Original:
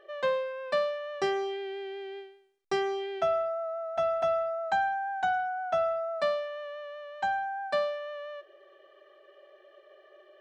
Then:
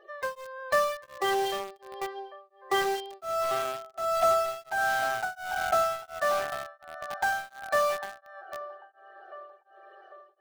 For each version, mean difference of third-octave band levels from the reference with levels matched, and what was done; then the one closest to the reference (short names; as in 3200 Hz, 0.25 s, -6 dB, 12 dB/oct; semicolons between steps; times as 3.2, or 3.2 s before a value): 10.0 dB: bin magnitudes rounded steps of 30 dB; narrowing echo 0.796 s, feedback 64%, band-pass 880 Hz, level -10 dB; in parallel at -5 dB: bit-crush 5-bit; on the sum: beating tremolo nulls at 1.4 Hz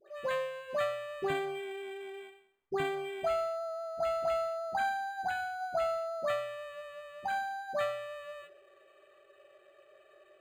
6.0 dB: bell 5000 Hz +10.5 dB 1.9 oct; de-hum 52.74 Hz, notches 21; dispersion highs, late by 86 ms, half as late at 1200 Hz; decimation joined by straight lines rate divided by 8×; gain -4 dB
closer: second